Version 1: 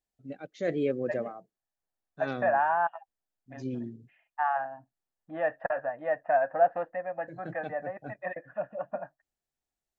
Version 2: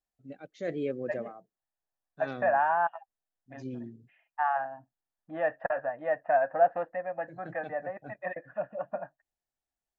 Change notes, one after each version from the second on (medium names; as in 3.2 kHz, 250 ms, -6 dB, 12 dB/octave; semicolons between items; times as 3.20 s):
first voice -4.0 dB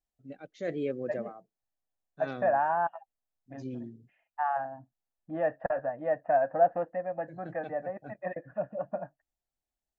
second voice: add tilt shelf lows +7 dB, about 660 Hz